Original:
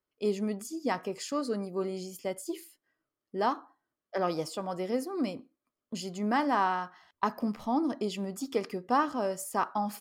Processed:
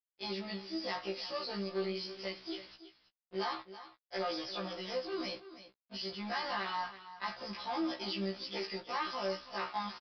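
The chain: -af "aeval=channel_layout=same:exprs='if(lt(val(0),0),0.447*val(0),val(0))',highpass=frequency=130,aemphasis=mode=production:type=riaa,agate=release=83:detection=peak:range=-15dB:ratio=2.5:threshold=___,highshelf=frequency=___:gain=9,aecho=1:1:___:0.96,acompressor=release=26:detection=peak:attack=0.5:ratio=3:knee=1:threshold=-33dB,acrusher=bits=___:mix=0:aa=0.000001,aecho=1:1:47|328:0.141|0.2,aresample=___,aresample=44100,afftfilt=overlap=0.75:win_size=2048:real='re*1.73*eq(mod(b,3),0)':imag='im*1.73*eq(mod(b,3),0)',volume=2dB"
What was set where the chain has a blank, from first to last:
-50dB, 2700, 5.7, 7, 11025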